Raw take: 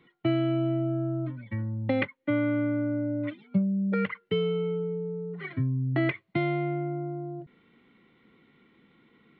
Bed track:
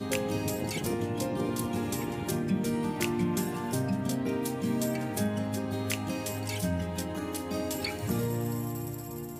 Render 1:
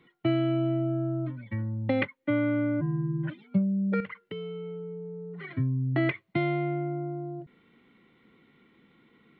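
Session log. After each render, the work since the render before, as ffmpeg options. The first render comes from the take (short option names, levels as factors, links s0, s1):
-filter_complex "[0:a]asplit=3[s0][s1][s2];[s0]afade=t=out:st=2.8:d=0.02[s3];[s1]afreqshift=-450,afade=t=in:st=2.8:d=0.02,afade=t=out:st=3.29:d=0.02[s4];[s2]afade=t=in:st=3.29:d=0.02[s5];[s3][s4][s5]amix=inputs=3:normalize=0,asettb=1/sr,asplit=3[s6][s7][s8];[s6]atrim=end=4.004[s9];[s7]atrim=start=4:end=5.49,asetpts=PTS-STARTPTS,afade=t=in:d=0.004:c=qsin,afade=t=out:st=1.486:d=0.004:c=qsin,acompressor=threshold=0.0141:ratio=3:attack=3.2:release=140:knee=1:detection=peak[s10];[s8]atrim=start=5.486[s11];[s9][s10]acrossfade=d=0.004:c1=hsin:c2=qsin[s12];[s12][s11]acrossfade=d=0.004:c1=qsin:c2=hsin"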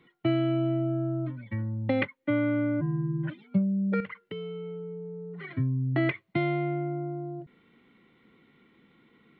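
-af anull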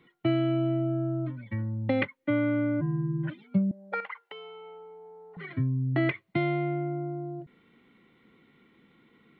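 -filter_complex "[0:a]asettb=1/sr,asplit=3[s0][s1][s2];[s0]atrim=end=3.714[s3];[s1]atrim=start=3.71:end=5.37,asetpts=PTS-STARTPTS,afade=t=in:d=0.004:c=qsin,afade=t=out:st=1.656:d=0.004:c=qsin,highpass=f=810:t=q:w=5.5[s4];[s2]atrim=start=5.366[s5];[s3][s4]acrossfade=d=0.004:c1=hsin:c2=qsin[s6];[s6][s5]acrossfade=d=0.004:c1=qsin:c2=hsin"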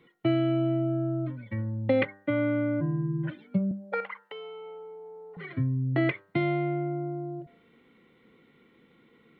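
-af "equalizer=f=490:w=3.3:g=6.5,bandreject=f=98.79:t=h:w=4,bandreject=f=197.58:t=h:w=4,bandreject=f=296.37:t=h:w=4,bandreject=f=395.16:t=h:w=4,bandreject=f=493.95:t=h:w=4,bandreject=f=592.74:t=h:w=4,bandreject=f=691.53:t=h:w=4,bandreject=f=790.32:t=h:w=4,bandreject=f=889.11:t=h:w=4,bandreject=f=987.9:t=h:w=4,bandreject=f=1086.69:t=h:w=4,bandreject=f=1185.48:t=h:w=4,bandreject=f=1284.27:t=h:w=4,bandreject=f=1383.06:t=h:w=4,bandreject=f=1481.85:t=h:w=4,bandreject=f=1580.64:t=h:w=4,bandreject=f=1679.43:t=h:w=4,bandreject=f=1778.22:t=h:w=4,bandreject=f=1877.01:t=h:w=4"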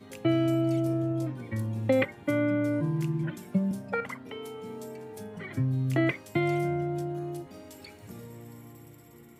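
-filter_complex "[1:a]volume=0.188[s0];[0:a][s0]amix=inputs=2:normalize=0"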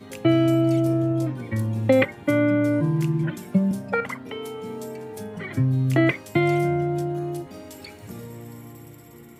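-af "volume=2.11"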